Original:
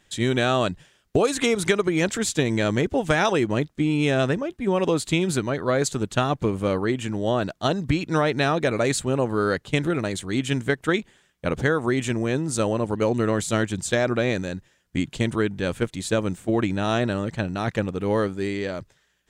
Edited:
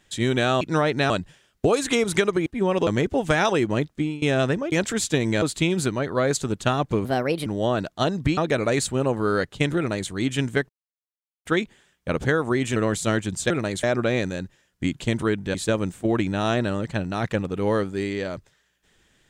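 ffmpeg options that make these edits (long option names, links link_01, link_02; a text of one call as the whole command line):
ffmpeg -i in.wav -filter_complex "[0:a]asplit=16[link_01][link_02][link_03][link_04][link_05][link_06][link_07][link_08][link_09][link_10][link_11][link_12][link_13][link_14][link_15][link_16];[link_01]atrim=end=0.612[link_17];[link_02]atrim=start=8.008:end=8.502[link_18];[link_03]atrim=start=0.608:end=1.972[link_19];[link_04]atrim=start=4.518:end=4.932[link_20];[link_05]atrim=start=2.668:end=4.02,asetpts=PTS-STARTPTS,afade=type=out:start_time=1.102:duration=0.25:silence=0.0794328[link_21];[link_06]atrim=start=4.02:end=4.522,asetpts=PTS-STARTPTS,afade=type=in:duration=0.004:curve=hsin:silence=0.0794328[link_22];[link_07]atrim=start=1.968:end=2.672[link_23];[link_08]atrim=start=4.928:end=6.564[link_24];[link_09]atrim=start=6.56:end=7.1,asetpts=PTS-STARTPTS,asetrate=57771,aresample=44100[link_25];[link_10]atrim=start=7.096:end=8.012[link_26];[link_11]atrim=start=8.498:end=10.82,asetpts=PTS-STARTPTS,afade=type=out:start_time=2.318:duration=0.004:curve=hsin,apad=pad_dur=0.76[link_27];[link_12]atrim=start=10.82:end=12.132,asetpts=PTS-STARTPTS,afade=type=in:duration=0.004:curve=hsin[link_28];[link_13]atrim=start=13.218:end=13.962[link_29];[link_14]atrim=start=9.898:end=10.232[link_30];[link_15]atrim=start=13.958:end=15.672[link_31];[link_16]atrim=start=15.978[link_32];[link_17][link_18]acrossfade=duration=0.004:curve1=hsin:curve2=hsin[link_33];[link_33][link_19]acrossfade=duration=0.004:curve1=hsin:curve2=hsin[link_34];[link_34][link_20]acrossfade=duration=0.004:curve1=hsin:curve2=hsin[link_35];[link_21][link_22]concat=n=2:v=0:a=1[link_36];[link_35][link_36]acrossfade=duration=0.004:curve1=hsin:curve2=hsin[link_37];[link_37][link_23]acrossfade=duration=0.004:curve1=hsin:curve2=hsin[link_38];[link_38][link_24]acrossfade=duration=0.004:curve1=hsin:curve2=hsin[link_39];[link_39][link_25]acrossfade=duration=0.004:curve1=hsin:curve2=hsin[link_40];[link_40][link_26]acrossfade=duration=0.004:curve1=hsin:curve2=hsin[link_41];[link_27][link_28]concat=n=2:v=0:a=1[link_42];[link_41][link_42]acrossfade=duration=0.004:curve1=hsin:curve2=hsin[link_43];[link_43][link_29]acrossfade=duration=0.004:curve1=hsin:curve2=hsin[link_44];[link_44][link_30]acrossfade=duration=0.004:curve1=hsin:curve2=hsin[link_45];[link_45][link_31]acrossfade=duration=0.004:curve1=hsin:curve2=hsin[link_46];[link_46][link_32]acrossfade=duration=0.004:curve1=hsin:curve2=hsin" out.wav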